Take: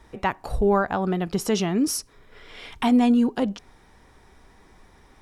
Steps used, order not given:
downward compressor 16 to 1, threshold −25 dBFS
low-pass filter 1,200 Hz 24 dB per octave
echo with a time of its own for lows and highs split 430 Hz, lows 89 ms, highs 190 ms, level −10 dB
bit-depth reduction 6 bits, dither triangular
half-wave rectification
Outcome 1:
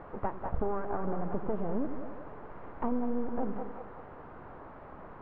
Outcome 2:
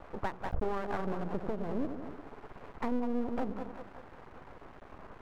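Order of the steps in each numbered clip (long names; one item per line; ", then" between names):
half-wave rectification, then echo with a time of its own for lows and highs, then downward compressor, then bit-depth reduction, then low-pass filter
echo with a time of its own for lows and highs, then bit-depth reduction, then downward compressor, then low-pass filter, then half-wave rectification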